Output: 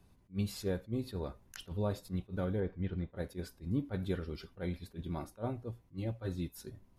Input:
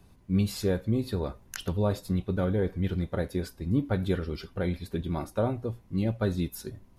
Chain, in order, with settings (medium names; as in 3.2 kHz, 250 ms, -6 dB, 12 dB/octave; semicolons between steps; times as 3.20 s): 2.60–3.16 s: low-pass 2.8 kHz 12 dB/octave; 5.71–6.58 s: comb of notches 210 Hz; attacks held to a fixed rise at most 320 dB/s; trim -7.5 dB